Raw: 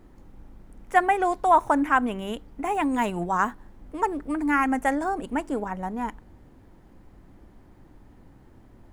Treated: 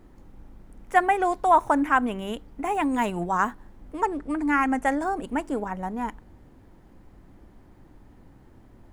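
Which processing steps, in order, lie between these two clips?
4.02–4.91 LPF 10000 Hz 12 dB/oct

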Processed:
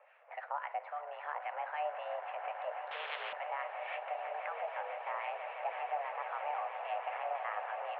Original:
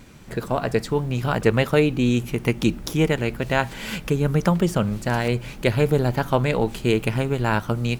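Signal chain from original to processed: limiter -16.5 dBFS, peak gain reduction 12 dB; mistuned SSB +300 Hz 310–2200 Hz; harmonic tremolo 3.7 Hz, crossover 1100 Hz; swelling echo 0.164 s, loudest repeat 8, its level -12.5 dB; 2.91–3.33 spectral compressor 4:1; gain -6.5 dB

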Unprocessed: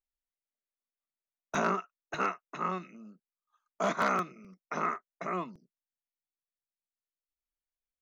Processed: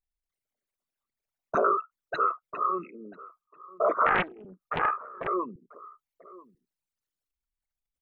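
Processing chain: formant sharpening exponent 3; outdoor echo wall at 170 m, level -19 dB; 4.06–5.28 Doppler distortion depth 0.74 ms; gain +5.5 dB

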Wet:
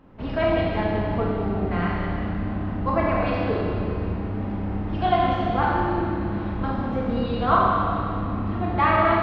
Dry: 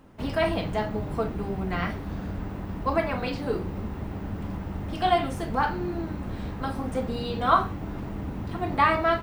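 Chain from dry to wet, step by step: Gaussian blur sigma 2.3 samples; Schroeder reverb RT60 2.5 s, combs from 30 ms, DRR -3 dB

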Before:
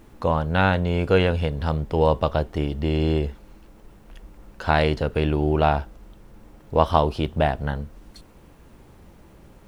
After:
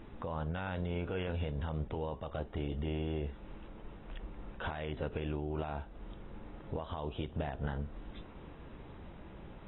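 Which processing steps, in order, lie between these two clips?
compressor 4:1, threshold -32 dBFS, peak gain reduction 17 dB; limiter -27.5 dBFS, peak gain reduction 10.5 dB; gain -1 dB; AAC 16 kbps 22050 Hz

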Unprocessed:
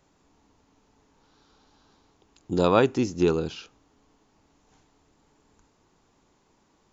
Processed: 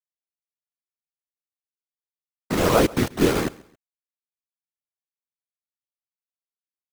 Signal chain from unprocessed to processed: LPF 2000 Hz 12 dB/oct; low shelf 75 Hz +10.5 dB; in parallel at +3 dB: compressor 4:1, threshold -41 dBFS, peak gain reduction 22 dB; on the sum: soft clip -1.5 dBFS, distortion -33 dB; bit-crush 4-bit; whisperiser; on a send: feedback echo 0.135 s, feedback 32%, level -22.5 dB

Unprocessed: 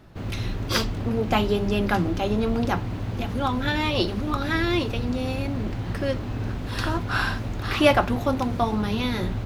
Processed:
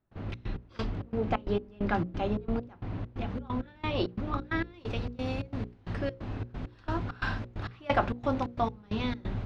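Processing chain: high shelf 4400 Hz -11 dB, from 4.74 s +2 dB, from 5.94 s -3 dB; step gate ".xx.x..xx" 133 bpm -24 dB; air absorption 110 m; notches 60/120/180/240/300/360/420/480/540 Hz; gain -4.5 dB

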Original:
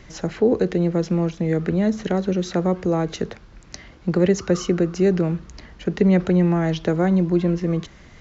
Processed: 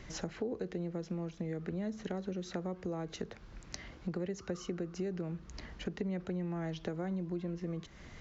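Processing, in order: compressor 4:1, threshold -32 dBFS, peak gain reduction 17 dB; gain -5 dB

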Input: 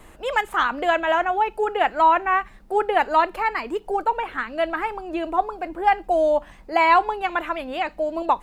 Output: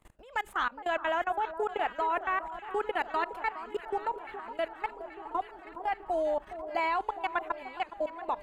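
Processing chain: 2.29–3.48 bell 690 Hz -5 dB 0.85 oct; level quantiser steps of 23 dB; echo with dull and thin repeats by turns 0.415 s, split 1300 Hz, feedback 80%, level -11.5 dB; gain -5.5 dB

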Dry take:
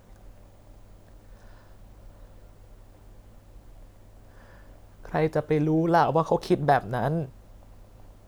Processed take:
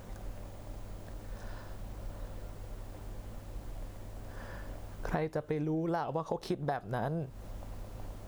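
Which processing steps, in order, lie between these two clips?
compressor 16:1, threshold -36 dBFS, peak gain reduction 21 dB; gain +6 dB

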